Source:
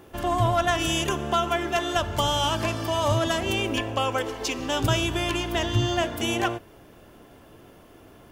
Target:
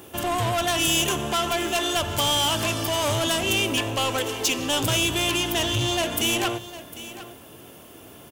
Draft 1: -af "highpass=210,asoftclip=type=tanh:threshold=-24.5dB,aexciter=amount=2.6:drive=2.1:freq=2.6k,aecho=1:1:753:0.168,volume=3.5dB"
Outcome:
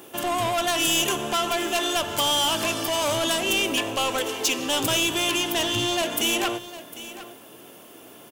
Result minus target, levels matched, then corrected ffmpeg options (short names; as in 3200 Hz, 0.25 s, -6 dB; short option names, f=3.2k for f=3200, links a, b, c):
125 Hz band -8.5 dB
-af "highpass=80,asoftclip=type=tanh:threshold=-24.5dB,aexciter=amount=2.6:drive=2.1:freq=2.6k,aecho=1:1:753:0.168,volume=3.5dB"